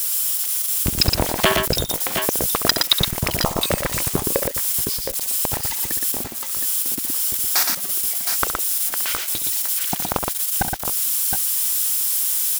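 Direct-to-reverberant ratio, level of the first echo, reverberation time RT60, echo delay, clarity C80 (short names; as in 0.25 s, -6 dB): none, -11.0 dB, none, 67 ms, none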